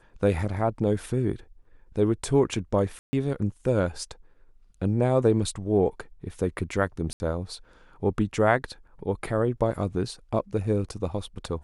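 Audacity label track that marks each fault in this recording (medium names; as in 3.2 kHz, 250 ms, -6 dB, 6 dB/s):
2.990000	3.130000	dropout 140 ms
7.130000	7.200000	dropout 70 ms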